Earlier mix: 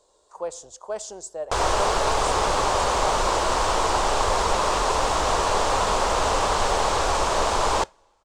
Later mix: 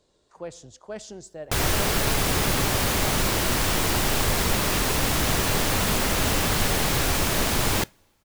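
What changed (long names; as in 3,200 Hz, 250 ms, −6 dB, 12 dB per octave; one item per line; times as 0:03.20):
background: remove high-frequency loss of the air 120 metres
master: add octave-band graphic EQ 125/250/500/1,000/2,000/8,000 Hz +12/+8/−6/−11/+6/−10 dB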